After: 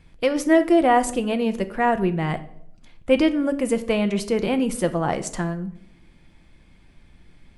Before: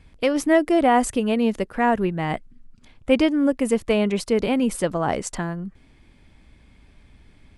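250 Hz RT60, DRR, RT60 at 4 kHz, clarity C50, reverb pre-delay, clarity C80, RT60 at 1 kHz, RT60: 0.70 s, 8.5 dB, 0.50 s, 15.5 dB, 6 ms, 18.5 dB, 0.60 s, 0.70 s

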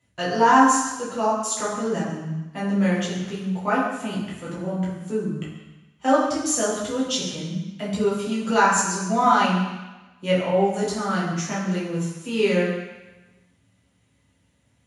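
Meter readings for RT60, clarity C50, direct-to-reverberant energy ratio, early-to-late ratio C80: 1.1 s, 1.5 dB, -8.5 dB, 4.0 dB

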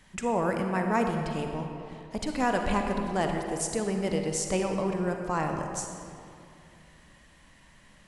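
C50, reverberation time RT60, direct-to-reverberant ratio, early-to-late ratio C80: 3.5 dB, 2.6 s, 3.0 dB, 4.5 dB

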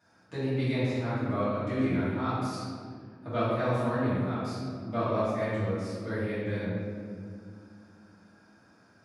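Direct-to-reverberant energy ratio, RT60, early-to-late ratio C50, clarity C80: -13.0 dB, 2.1 s, -3.0 dB, 0.0 dB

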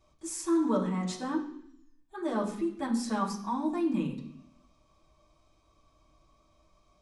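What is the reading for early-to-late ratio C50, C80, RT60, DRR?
8.0 dB, 11.0 dB, 0.65 s, -7.0 dB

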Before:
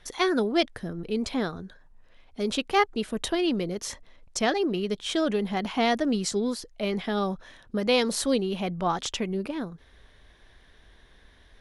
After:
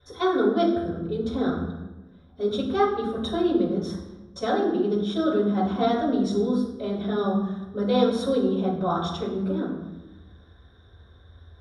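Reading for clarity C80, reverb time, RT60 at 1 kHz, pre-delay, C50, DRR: 6.0 dB, 1.1 s, 1.0 s, 3 ms, 3.0 dB, -13.5 dB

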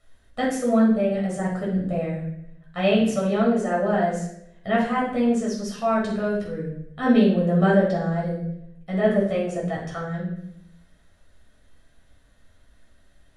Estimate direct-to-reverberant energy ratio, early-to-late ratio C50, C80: -5.0 dB, 3.5 dB, 7.5 dB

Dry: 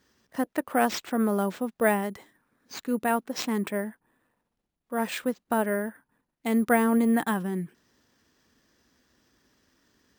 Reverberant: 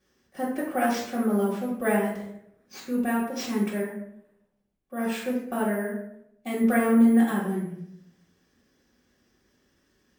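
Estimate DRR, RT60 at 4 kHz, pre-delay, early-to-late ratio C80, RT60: -7.5 dB, 0.45 s, 3 ms, 7.0 dB, 0.75 s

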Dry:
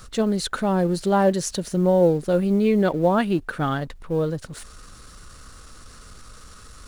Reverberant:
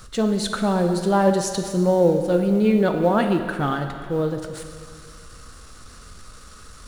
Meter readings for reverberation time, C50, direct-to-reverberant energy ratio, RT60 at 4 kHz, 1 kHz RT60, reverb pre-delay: 2.2 s, 6.5 dB, 5.5 dB, 1.9 s, 2.2 s, 13 ms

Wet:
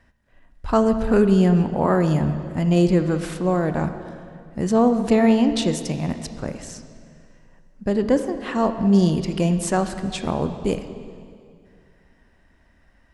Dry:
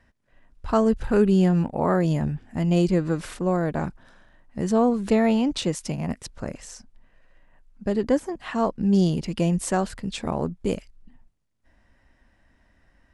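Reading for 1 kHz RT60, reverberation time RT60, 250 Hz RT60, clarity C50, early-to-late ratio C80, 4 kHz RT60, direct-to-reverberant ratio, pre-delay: 2.2 s, 2.3 s, 2.6 s, 9.5 dB, 10.5 dB, 2.0 s, 9.0 dB, 23 ms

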